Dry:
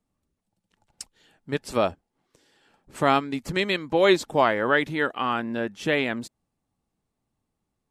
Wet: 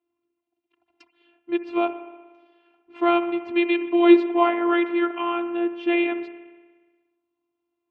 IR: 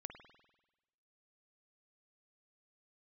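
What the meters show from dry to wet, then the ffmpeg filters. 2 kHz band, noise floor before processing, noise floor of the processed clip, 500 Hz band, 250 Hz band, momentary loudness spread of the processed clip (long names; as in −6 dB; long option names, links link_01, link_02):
−3.0 dB, −81 dBFS, −82 dBFS, +1.5 dB, +8.0 dB, 13 LU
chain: -filter_complex "[0:a]asplit=2[link_01][link_02];[1:a]atrim=start_sample=2205,asetrate=36162,aresample=44100[link_03];[link_02][link_03]afir=irnorm=-1:irlink=0,volume=3.5dB[link_04];[link_01][link_04]amix=inputs=2:normalize=0,afftfilt=real='hypot(re,im)*cos(PI*b)':imag='0':win_size=512:overlap=0.75,highpass=190,equalizer=frequency=220:width_type=q:width=4:gain=-7,equalizer=frequency=340:width_type=q:width=4:gain=7,equalizer=frequency=540:width_type=q:width=4:gain=-9,equalizer=frequency=870:width_type=q:width=4:gain=5,equalizer=frequency=1700:width_type=q:width=4:gain=-8,equalizer=frequency=2600:width_type=q:width=4:gain=5,lowpass=frequency=3000:width=0.5412,lowpass=frequency=3000:width=1.3066,volume=-2.5dB"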